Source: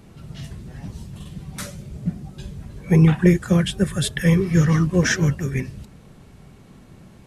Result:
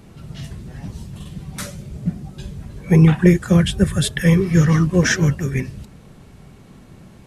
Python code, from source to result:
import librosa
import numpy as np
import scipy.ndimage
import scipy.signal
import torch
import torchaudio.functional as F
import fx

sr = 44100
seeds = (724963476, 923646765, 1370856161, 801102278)

y = fx.peak_eq(x, sr, hz=70.0, db=10.0, octaves=1.2, at=(3.54, 4.01))
y = y * librosa.db_to_amplitude(2.5)